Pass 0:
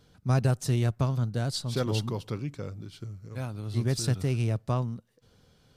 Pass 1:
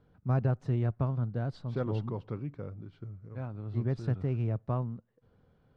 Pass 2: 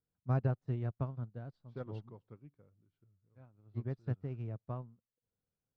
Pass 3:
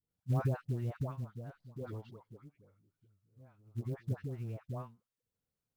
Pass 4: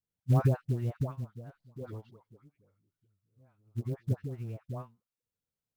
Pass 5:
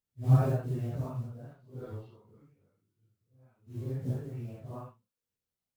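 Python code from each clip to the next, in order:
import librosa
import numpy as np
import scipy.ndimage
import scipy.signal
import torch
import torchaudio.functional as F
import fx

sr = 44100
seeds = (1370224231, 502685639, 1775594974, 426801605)

y1 = scipy.signal.sosfilt(scipy.signal.butter(2, 1500.0, 'lowpass', fs=sr, output='sos'), x)
y1 = y1 * 10.0 ** (-3.5 / 20.0)
y2 = fx.upward_expand(y1, sr, threshold_db=-41.0, expansion=2.5)
y2 = y2 * 10.0 ** (-2.5 / 20.0)
y3 = fx.dispersion(y2, sr, late='highs', ms=110.0, hz=870.0)
y3 = fx.quant_float(y3, sr, bits=4)
y4 = fx.upward_expand(y3, sr, threshold_db=-52.0, expansion=1.5)
y4 = y4 * 10.0 ** (7.5 / 20.0)
y5 = fx.phase_scramble(y4, sr, seeds[0], window_ms=200)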